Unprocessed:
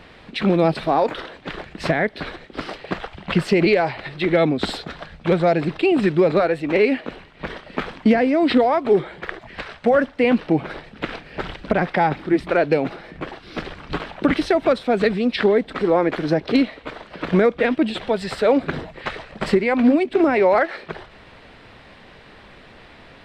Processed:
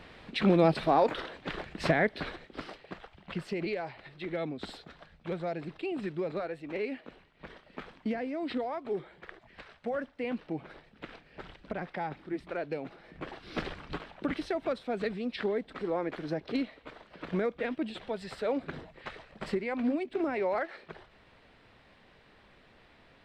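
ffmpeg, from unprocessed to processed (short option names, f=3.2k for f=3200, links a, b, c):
-af "volume=6.5dB,afade=t=out:st=2.12:d=0.75:silence=0.266073,afade=t=in:st=12.96:d=0.7:silence=0.237137,afade=t=out:st=13.66:d=0.35:silence=0.334965"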